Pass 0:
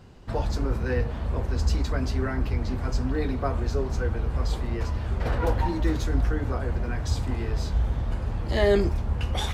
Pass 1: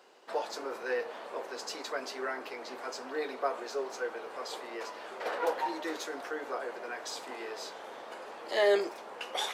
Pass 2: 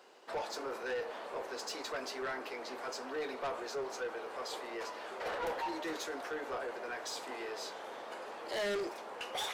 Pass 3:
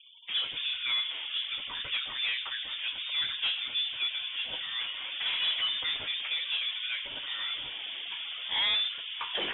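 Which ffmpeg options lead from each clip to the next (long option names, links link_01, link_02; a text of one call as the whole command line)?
ffmpeg -i in.wav -af "highpass=frequency=420:width=0.5412,highpass=frequency=420:width=1.3066,volume=-1.5dB" out.wav
ffmpeg -i in.wav -af "asoftclip=type=tanh:threshold=-32.5dB" out.wav
ffmpeg -i in.wav -af "afftfilt=real='re*gte(hypot(re,im),0.00224)':imag='im*gte(hypot(re,im),0.00224)':win_size=1024:overlap=0.75,lowpass=frequency=3300:width_type=q:width=0.5098,lowpass=frequency=3300:width_type=q:width=0.6013,lowpass=frequency=3300:width_type=q:width=0.9,lowpass=frequency=3300:width_type=q:width=2.563,afreqshift=-3900,volume=7dB" out.wav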